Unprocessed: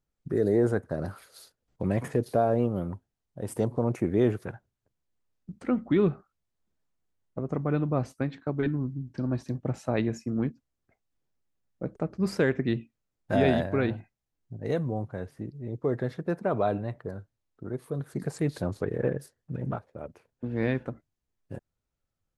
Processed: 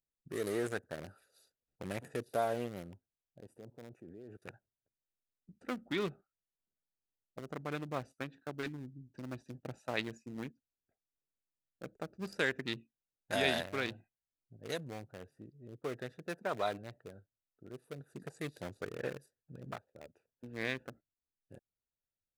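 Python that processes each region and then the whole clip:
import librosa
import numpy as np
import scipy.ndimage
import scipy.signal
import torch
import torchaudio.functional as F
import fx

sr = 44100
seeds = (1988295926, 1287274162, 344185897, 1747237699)

y = fx.chain(x, sr, fx.highpass(hz=72.0, slope=12),
    fx.high_shelf(hz=3600.0, db=-6.0),
    fx.level_steps(step_db=18), at=(3.4, 4.42))
y = fx.wiener(y, sr, points=41)
y = librosa.effects.preemphasis(y, coef=0.97, zi=[0.0])
y = y * 10.0 ** (12.5 / 20.0)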